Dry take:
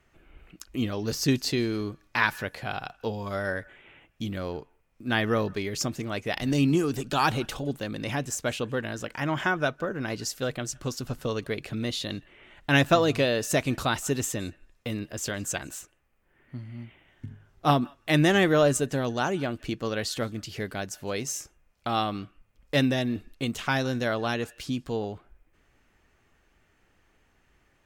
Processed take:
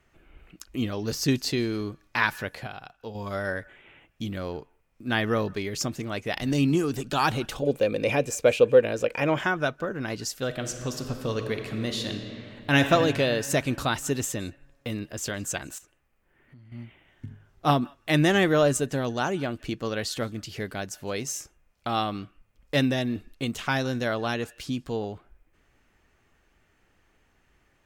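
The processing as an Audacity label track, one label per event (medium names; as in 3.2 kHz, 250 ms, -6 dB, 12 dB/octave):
2.670000	3.150000	gain -7.5 dB
7.620000	9.390000	small resonant body resonances 500/2400 Hz, height 17 dB, ringing for 30 ms
10.450000	12.910000	reverb throw, RT60 2.9 s, DRR 5 dB
15.780000	16.720000	compression 5:1, threshold -49 dBFS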